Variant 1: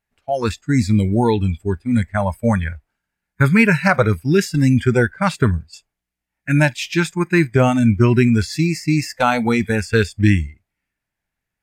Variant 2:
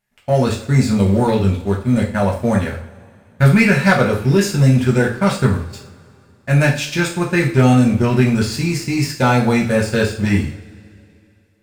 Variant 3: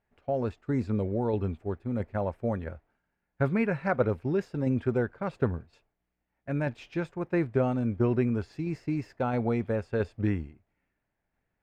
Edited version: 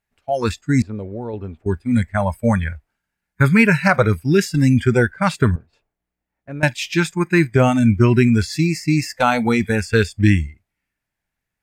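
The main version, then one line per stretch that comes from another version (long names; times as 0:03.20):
1
0:00.82–0:01.66: punch in from 3
0:05.56–0:06.63: punch in from 3
not used: 2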